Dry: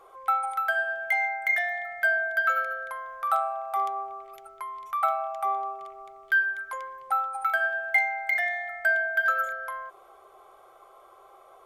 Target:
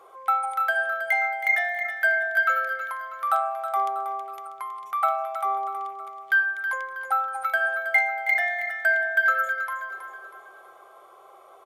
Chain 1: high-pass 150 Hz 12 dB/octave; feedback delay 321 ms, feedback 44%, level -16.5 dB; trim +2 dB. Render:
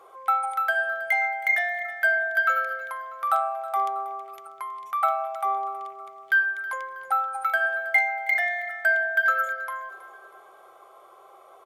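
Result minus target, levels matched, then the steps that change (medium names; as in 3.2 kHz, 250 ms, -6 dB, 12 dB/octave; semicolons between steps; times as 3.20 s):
echo-to-direct -7 dB
change: feedback delay 321 ms, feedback 44%, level -9.5 dB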